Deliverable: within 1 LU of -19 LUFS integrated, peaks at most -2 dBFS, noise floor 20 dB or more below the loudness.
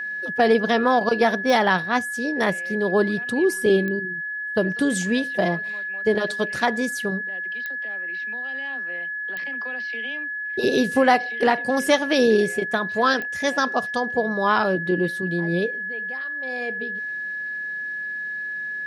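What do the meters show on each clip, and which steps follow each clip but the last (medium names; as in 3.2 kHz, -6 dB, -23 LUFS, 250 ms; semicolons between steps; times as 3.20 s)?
clicks found 5; steady tone 1.7 kHz; tone level -27 dBFS; loudness -23.0 LUFS; peak level -5.5 dBFS; loudness target -19.0 LUFS
-> de-click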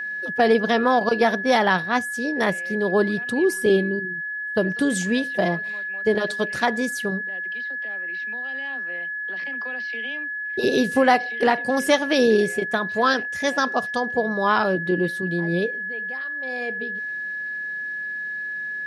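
clicks found 0; steady tone 1.7 kHz; tone level -27 dBFS
-> band-stop 1.7 kHz, Q 30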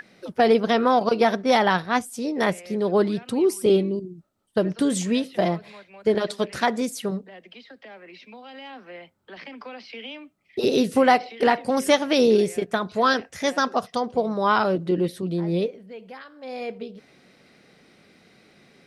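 steady tone not found; loudness -22.5 LUFS; peak level -6.0 dBFS; loudness target -19.0 LUFS
-> trim +3.5 dB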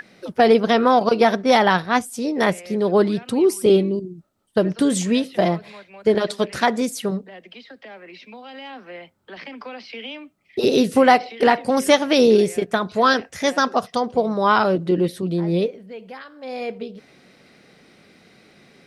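loudness -19.0 LUFS; peak level -2.5 dBFS; noise floor -55 dBFS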